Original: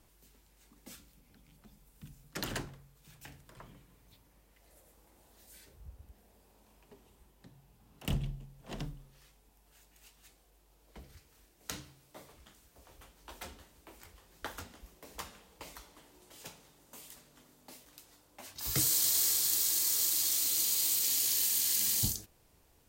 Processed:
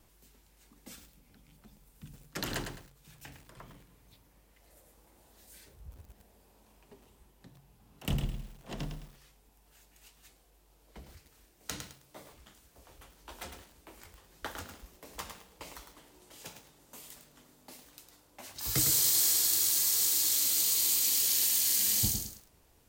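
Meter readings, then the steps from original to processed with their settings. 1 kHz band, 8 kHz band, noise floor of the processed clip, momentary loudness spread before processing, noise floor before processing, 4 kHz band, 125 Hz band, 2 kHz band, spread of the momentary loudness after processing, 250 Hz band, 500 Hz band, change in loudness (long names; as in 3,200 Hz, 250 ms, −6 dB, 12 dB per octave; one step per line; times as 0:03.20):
+2.5 dB, +2.5 dB, −65 dBFS, 21 LU, −66 dBFS, +2.5 dB, +2.0 dB, +2.5 dB, 21 LU, +2.5 dB, +2.5 dB, +2.5 dB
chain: pitch vibrato 2 Hz 17 cents
feedback echo at a low word length 106 ms, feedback 35%, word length 9 bits, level −6 dB
level +1.5 dB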